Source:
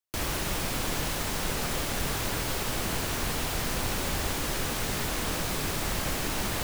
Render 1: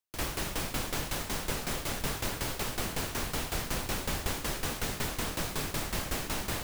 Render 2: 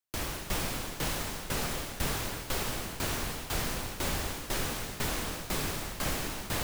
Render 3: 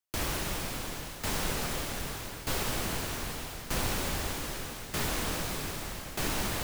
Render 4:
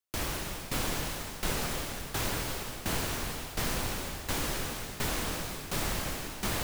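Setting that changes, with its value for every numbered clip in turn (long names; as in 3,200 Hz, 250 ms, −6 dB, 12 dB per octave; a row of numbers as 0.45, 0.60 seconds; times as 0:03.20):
shaped tremolo, speed: 5.4, 2, 0.81, 1.4 Hertz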